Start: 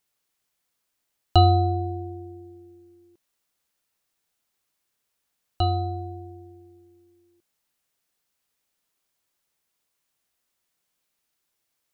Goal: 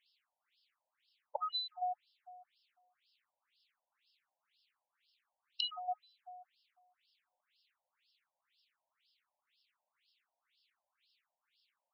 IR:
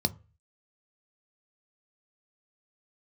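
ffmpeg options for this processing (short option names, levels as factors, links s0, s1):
-af "crystalizer=i=4.5:c=0,afftfilt=real='re*lt(hypot(re,im),0.282)':imag='im*lt(hypot(re,im),0.282)':win_size=1024:overlap=0.75,afftfilt=real='re*between(b*sr/1024,690*pow(3900/690,0.5+0.5*sin(2*PI*2*pts/sr))/1.41,690*pow(3900/690,0.5+0.5*sin(2*PI*2*pts/sr))*1.41)':imag='im*between(b*sr/1024,690*pow(3900/690,0.5+0.5*sin(2*PI*2*pts/sr))/1.41,690*pow(3900/690,0.5+0.5*sin(2*PI*2*pts/sr))*1.41)':win_size=1024:overlap=0.75,volume=1.19"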